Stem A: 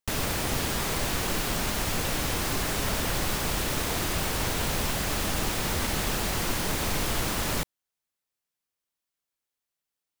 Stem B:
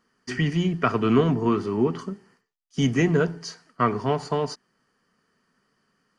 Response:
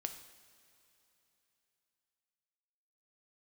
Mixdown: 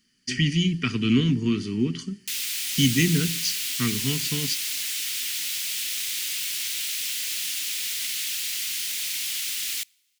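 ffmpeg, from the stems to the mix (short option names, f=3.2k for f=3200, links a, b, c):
-filter_complex "[0:a]highpass=820,adelay=2200,volume=-4.5dB,asplit=2[a][b];[b]volume=-20dB[c];[1:a]volume=1dB[d];[2:a]atrim=start_sample=2205[e];[c][e]afir=irnorm=-1:irlink=0[f];[a][d][f]amix=inputs=3:normalize=0,firequalizer=gain_entry='entry(280,0);entry(600,-29);entry(2100,3);entry(3000,8)':delay=0.05:min_phase=1"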